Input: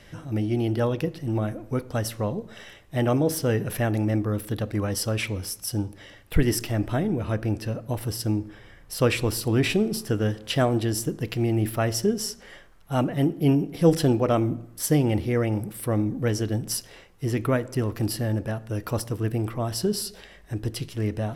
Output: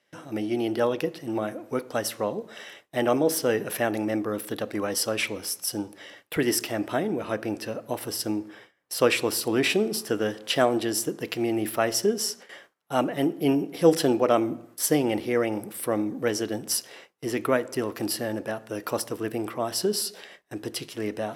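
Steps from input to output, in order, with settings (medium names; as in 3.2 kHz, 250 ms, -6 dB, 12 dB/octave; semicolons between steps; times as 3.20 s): gate with hold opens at -36 dBFS; high-pass 310 Hz 12 dB/octave; trim +2.5 dB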